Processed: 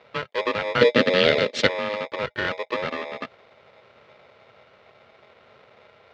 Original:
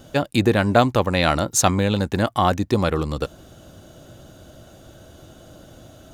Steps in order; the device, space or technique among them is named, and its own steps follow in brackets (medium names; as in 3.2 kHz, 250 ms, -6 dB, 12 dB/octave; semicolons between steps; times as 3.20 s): ring modulator pedal into a guitar cabinet (polarity switched at an audio rate 730 Hz; cabinet simulation 110–3800 Hz, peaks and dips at 170 Hz -5 dB, 320 Hz -4 dB, 500 Hz +6 dB, 880 Hz -8 dB, 1.8 kHz +3 dB); 0.81–1.67 s: graphic EQ 125/250/500/1000/2000/4000/8000 Hz +3/+12/+11/-5/+5/+10/+7 dB; trim -7.5 dB